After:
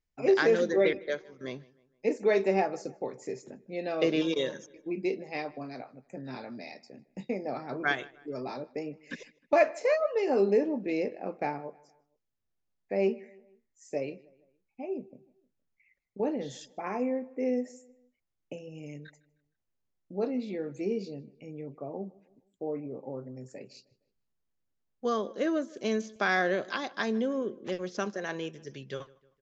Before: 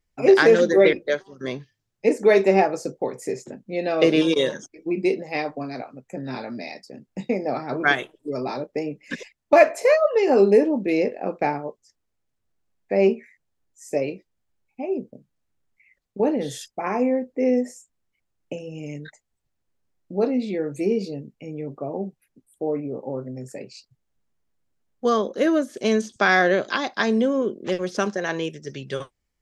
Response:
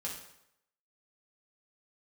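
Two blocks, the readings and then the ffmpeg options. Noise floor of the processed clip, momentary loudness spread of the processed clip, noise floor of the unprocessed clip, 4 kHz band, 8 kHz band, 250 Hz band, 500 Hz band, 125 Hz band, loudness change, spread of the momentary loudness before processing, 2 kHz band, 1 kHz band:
-80 dBFS, 18 LU, -77 dBFS, -9.0 dB, n/a, -9.0 dB, -9.0 dB, -9.0 dB, -9.0 dB, 18 LU, -9.0 dB, -9.0 dB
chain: -filter_complex "[0:a]aresample=16000,aresample=44100,asplit=2[a][b];[b]adelay=155,lowpass=f=3.3k:p=1,volume=-22.5dB,asplit=2[c][d];[d]adelay=155,lowpass=f=3.3k:p=1,volume=0.46,asplit=2[e][f];[f]adelay=155,lowpass=f=3.3k:p=1,volume=0.46[g];[a][c][e][g]amix=inputs=4:normalize=0,volume=-9dB"

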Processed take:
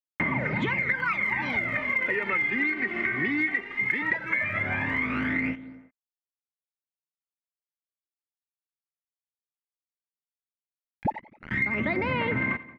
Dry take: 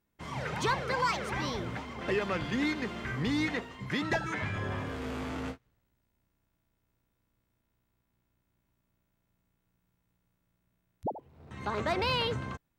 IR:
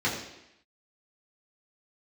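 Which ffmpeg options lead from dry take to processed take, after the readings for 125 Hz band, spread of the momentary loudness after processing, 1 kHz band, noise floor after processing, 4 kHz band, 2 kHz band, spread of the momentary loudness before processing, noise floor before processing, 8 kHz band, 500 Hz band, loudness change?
+1.5 dB, 6 LU, +1.0 dB, under -85 dBFS, -6.5 dB, +11.5 dB, 10 LU, -79 dBFS, under -15 dB, 0.0 dB, +6.5 dB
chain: -filter_complex "[0:a]aecho=1:1:3.3:0.33,asplit=2[a][b];[b]alimiter=level_in=6dB:limit=-24dB:level=0:latency=1:release=379,volume=-6dB,volume=-2.5dB[c];[a][c]amix=inputs=2:normalize=0,highpass=f=95:w=0.5412,highpass=f=95:w=1.3066,aeval=exprs='val(0)*gte(abs(val(0)),0.0075)':c=same,lowpass=f=2.1k:t=q:w=11,equalizer=f=220:w=1.4:g=7,asplit=2[d][e];[e]aecho=0:1:88|176|264|352:0.0841|0.0429|0.0219|0.0112[f];[d][f]amix=inputs=2:normalize=0,aphaser=in_gain=1:out_gain=1:delay=2.7:decay=0.67:speed=0.16:type=sinusoidal,acompressor=threshold=-30dB:ratio=6,volume=5dB"

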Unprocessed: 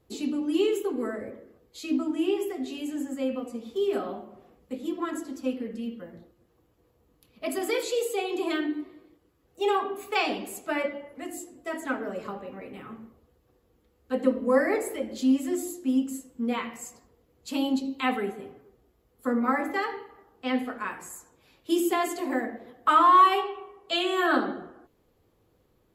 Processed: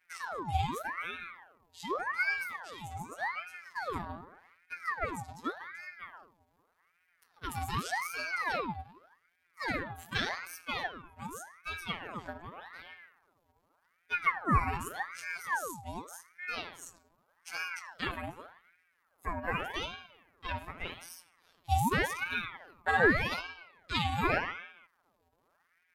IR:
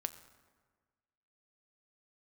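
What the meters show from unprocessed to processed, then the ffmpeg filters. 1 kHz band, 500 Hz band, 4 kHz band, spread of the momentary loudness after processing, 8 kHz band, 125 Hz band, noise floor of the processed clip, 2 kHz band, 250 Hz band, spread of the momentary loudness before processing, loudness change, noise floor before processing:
-7.5 dB, -12.0 dB, -5.0 dB, 18 LU, -6.5 dB, n/a, -75 dBFS, +1.0 dB, -14.0 dB, 17 LU, -7.0 dB, -67 dBFS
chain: -af "afftfilt=real='hypot(re,im)*cos(PI*b)':imag='0':win_size=1024:overlap=0.75,aeval=exprs='val(0)*sin(2*PI*1200*n/s+1200*0.65/0.85*sin(2*PI*0.85*n/s))':c=same"

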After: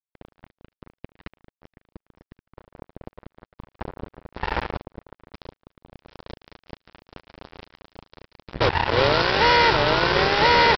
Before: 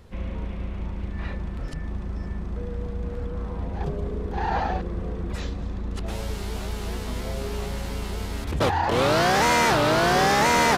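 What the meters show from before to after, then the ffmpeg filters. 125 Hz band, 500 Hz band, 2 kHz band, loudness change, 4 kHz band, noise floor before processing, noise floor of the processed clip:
-4.0 dB, +1.0 dB, +3.0 dB, +6.5 dB, +4.5 dB, -33 dBFS, under -85 dBFS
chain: -af "aecho=1:1:2.1:0.6,aresample=11025,acrusher=bits=2:mix=0:aa=0.5,aresample=44100"

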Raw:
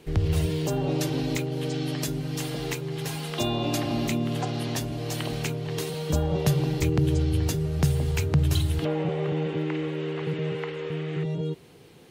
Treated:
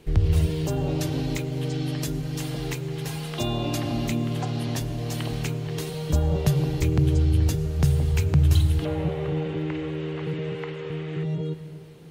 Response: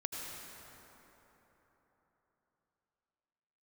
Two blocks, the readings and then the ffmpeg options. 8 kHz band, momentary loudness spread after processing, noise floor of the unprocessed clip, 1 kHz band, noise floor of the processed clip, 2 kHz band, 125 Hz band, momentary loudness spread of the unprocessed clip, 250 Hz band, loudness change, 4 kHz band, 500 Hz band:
-1.5 dB, 10 LU, -48 dBFS, -1.5 dB, -37 dBFS, -1.5 dB, +3.0 dB, 7 LU, 0.0 dB, +1.5 dB, -1.5 dB, -1.5 dB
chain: -filter_complex "[0:a]lowshelf=f=80:g=12,asplit=2[a][b];[1:a]atrim=start_sample=2205[c];[b][c]afir=irnorm=-1:irlink=0,volume=-10.5dB[d];[a][d]amix=inputs=2:normalize=0,volume=-3.5dB"

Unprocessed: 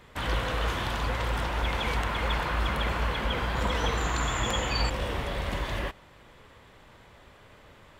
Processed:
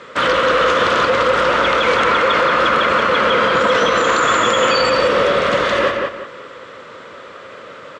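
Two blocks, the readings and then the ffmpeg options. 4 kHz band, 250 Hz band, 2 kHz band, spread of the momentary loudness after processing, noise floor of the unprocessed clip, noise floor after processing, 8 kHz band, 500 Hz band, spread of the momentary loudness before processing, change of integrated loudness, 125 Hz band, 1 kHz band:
+13.0 dB, +11.5 dB, +16.0 dB, 3 LU, -54 dBFS, -37 dBFS, +10.0 dB, +20.0 dB, 4 LU, +15.0 dB, -1.5 dB, +16.5 dB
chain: -filter_complex "[0:a]highpass=240,equalizer=f=520:t=q:w=4:g=10,equalizer=f=800:t=q:w=4:g=-9,equalizer=f=1.3k:t=q:w=4:g=10,lowpass=f=7.3k:w=0.5412,lowpass=f=7.3k:w=1.3066,asplit=2[a][b];[b]adelay=179,lowpass=f=3.2k:p=1,volume=-3.5dB,asplit=2[c][d];[d]adelay=179,lowpass=f=3.2k:p=1,volume=0.32,asplit=2[e][f];[f]adelay=179,lowpass=f=3.2k:p=1,volume=0.32,asplit=2[g][h];[h]adelay=179,lowpass=f=3.2k:p=1,volume=0.32[i];[c][e][g][i]amix=inputs=4:normalize=0[j];[a][j]amix=inputs=2:normalize=0,alimiter=level_in=19dB:limit=-1dB:release=50:level=0:latency=1,volume=-4.5dB"

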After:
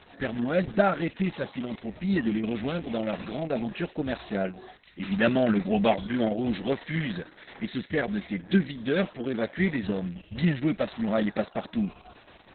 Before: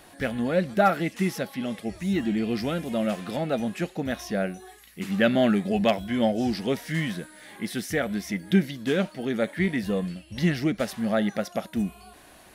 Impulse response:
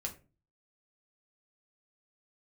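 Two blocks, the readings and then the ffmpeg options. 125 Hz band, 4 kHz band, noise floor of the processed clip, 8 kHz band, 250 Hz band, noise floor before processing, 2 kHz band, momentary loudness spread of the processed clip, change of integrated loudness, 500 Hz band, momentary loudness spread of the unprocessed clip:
-1.0 dB, -3.5 dB, -55 dBFS, under -35 dB, -1.5 dB, -52 dBFS, -1.5 dB, 10 LU, -1.5 dB, -1.5 dB, 9 LU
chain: -ar 48000 -c:a libopus -b:a 6k

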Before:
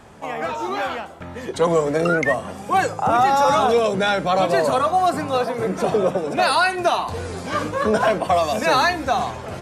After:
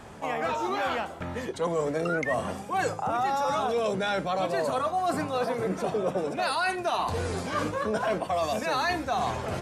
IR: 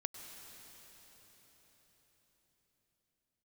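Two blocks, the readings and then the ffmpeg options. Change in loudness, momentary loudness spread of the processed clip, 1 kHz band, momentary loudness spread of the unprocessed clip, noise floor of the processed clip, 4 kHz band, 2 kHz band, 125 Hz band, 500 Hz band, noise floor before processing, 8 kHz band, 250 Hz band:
-8.5 dB, 4 LU, -9.0 dB, 10 LU, -40 dBFS, -8.5 dB, -8.5 dB, -6.0 dB, -8.5 dB, -35 dBFS, -7.5 dB, -7.0 dB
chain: -af "areverse,acompressor=threshold=-25dB:ratio=6,areverse"

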